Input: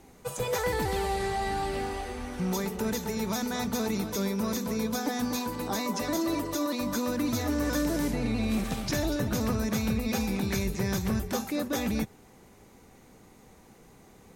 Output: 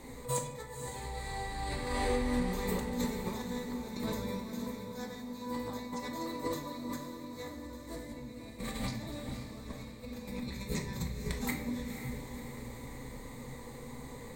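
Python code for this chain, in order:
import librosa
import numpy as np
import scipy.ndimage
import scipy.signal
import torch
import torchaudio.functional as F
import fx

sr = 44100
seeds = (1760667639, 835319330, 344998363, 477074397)

p1 = fx.ripple_eq(x, sr, per_octave=1.0, db=11)
p2 = fx.over_compress(p1, sr, threshold_db=-35.0, ratio=-0.5)
p3 = 10.0 ** (-19.5 / 20.0) * np.tanh(p2 / 10.0 ** (-19.5 / 20.0))
p4 = p3 + fx.echo_diffused(p3, sr, ms=514, feedback_pct=49, wet_db=-8.0, dry=0)
p5 = fx.room_shoebox(p4, sr, seeds[0], volume_m3=190.0, walls='mixed', distance_m=0.79)
y = p5 * 10.0 ** (-5.0 / 20.0)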